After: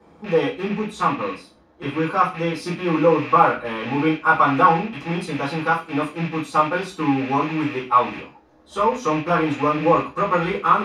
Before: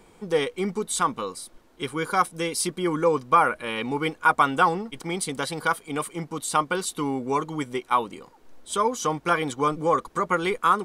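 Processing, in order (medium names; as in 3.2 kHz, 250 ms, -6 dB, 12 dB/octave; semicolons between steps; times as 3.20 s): rattle on loud lows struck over -43 dBFS, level -19 dBFS; 0.68–2.63 s: treble shelf 5.4 kHz -4.5 dB; reverberation RT60 0.30 s, pre-delay 3 ms, DRR -9 dB; trim -15 dB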